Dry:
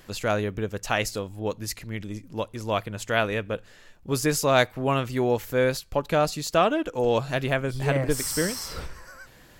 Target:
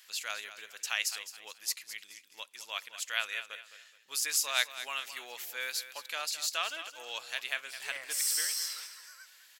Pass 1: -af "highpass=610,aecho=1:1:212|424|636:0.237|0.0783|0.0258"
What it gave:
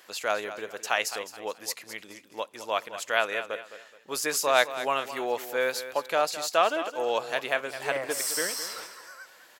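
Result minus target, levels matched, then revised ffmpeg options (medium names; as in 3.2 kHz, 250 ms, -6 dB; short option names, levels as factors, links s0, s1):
500 Hz band +16.0 dB
-af "highpass=2400,aecho=1:1:212|424|636:0.237|0.0783|0.0258"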